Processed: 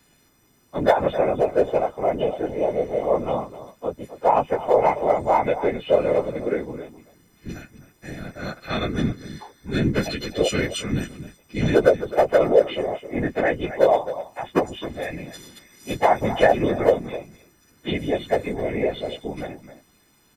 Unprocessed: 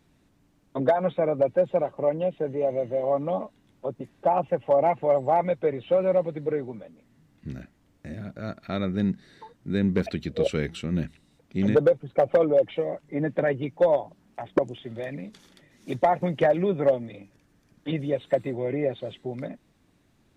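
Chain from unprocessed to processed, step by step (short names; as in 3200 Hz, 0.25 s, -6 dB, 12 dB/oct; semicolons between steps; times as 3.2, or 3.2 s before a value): frequency quantiser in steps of 3 st; echo 0.261 s -13.5 dB; whisperiser; gain +3 dB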